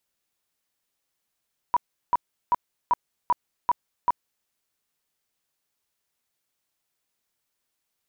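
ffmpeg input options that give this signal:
-f lavfi -i "aevalsrc='0.158*sin(2*PI*974*mod(t,0.39))*lt(mod(t,0.39),25/974)':d=2.73:s=44100"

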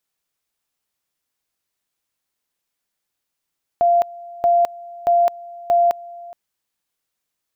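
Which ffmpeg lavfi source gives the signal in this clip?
-f lavfi -i "aevalsrc='pow(10,(-11.5-21.5*gte(mod(t,0.63),0.21))/20)*sin(2*PI*692*t)':d=2.52:s=44100"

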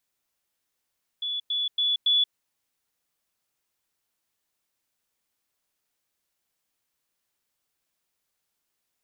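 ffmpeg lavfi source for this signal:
-f lavfi -i "aevalsrc='pow(10,(-27+3*floor(t/0.28))/20)*sin(2*PI*3430*t)*clip(min(mod(t,0.28),0.18-mod(t,0.28))/0.005,0,1)':d=1.12:s=44100"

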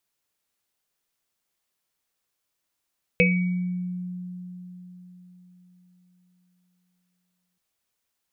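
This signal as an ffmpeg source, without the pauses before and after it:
-f lavfi -i "aevalsrc='0.119*pow(10,-3*t/4.4)*sin(2*PI*180*t)+0.178*pow(10,-3*t/0.21)*sin(2*PI*492*t)+0.133*pow(10,-3*t/0.75)*sin(2*PI*2260*t)+0.119*pow(10,-3*t/0.25)*sin(2*PI*2560*t)':d=4.38:s=44100"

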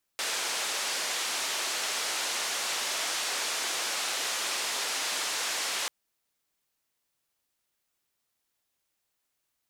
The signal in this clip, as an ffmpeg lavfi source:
-f lavfi -i "anoisesrc=c=white:d=5.69:r=44100:seed=1,highpass=f=460,lowpass=f=7000,volume=-21.6dB"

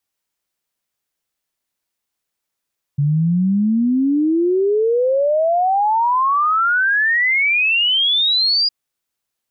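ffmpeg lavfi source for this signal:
-f lavfi -i "aevalsrc='0.224*clip(min(t,5.71-t)/0.01,0,1)*sin(2*PI*140*5.71/log(4900/140)*(exp(log(4900/140)*t/5.71)-1))':d=5.71:s=44100"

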